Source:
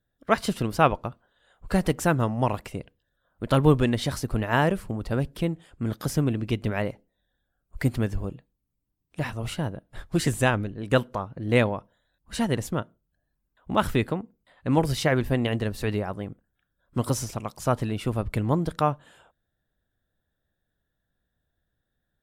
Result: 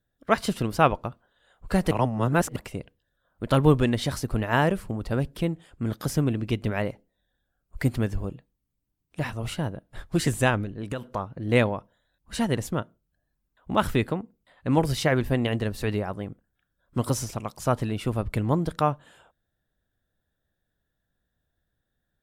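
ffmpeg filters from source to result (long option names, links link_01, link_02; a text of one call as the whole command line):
ffmpeg -i in.wav -filter_complex "[0:a]asettb=1/sr,asplit=3[link_01][link_02][link_03];[link_01]atrim=end=10.644[link_04];[link_02]atrim=start=10.64:end=11.04,asetpts=PTS-STARTPTS,afade=type=in:duration=0.004:curve=qsin,afade=type=out:start_time=0.396:duration=0.004:curve=qsin,acompressor=threshold=-26dB:ratio=10:attack=3.2:release=140:knee=1:detection=peak[link_05];[link_03]atrim=start=11.036[link_06];[link_04][link_05]acrossfade=duration=0.004:curve1=hsin:curve2=qsin[link_07];[link_07][link_06]acrossfade=duration=0.004:curve1=qsin:curve2=hsin,asplit=3[link_08][link_09][link_10];[link_08]atrim=end=1.912[link_11];[link_09]atrim=start=1.908:end=2.562,asetpts=PTS-STARTPTS,areverse[link_12];[link_10]atrim=start=2.558[link_13];[link_11][link_12]acrossfade=duration=0.004:curve1=hsin:curve2=hsin[link_14];[link_14][link_13]acrossfade=duration=0.004:curve1=hsin:curve2=hsin" out.wav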